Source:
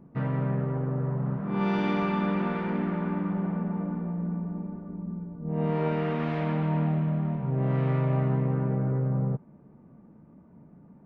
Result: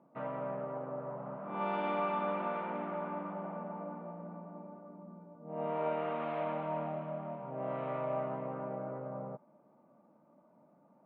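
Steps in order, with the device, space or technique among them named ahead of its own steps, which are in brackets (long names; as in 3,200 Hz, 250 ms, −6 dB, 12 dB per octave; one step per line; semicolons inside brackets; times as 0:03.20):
phone earpiece (loudspeaker in its box 350–3,200 Hz, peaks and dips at 420 Hz −7 dB, 600 Hz +10 dB, 860 Hz +4 dB, 1,200 Hz +4 dB, 1,800 Hz −6 dB)
level −6 dB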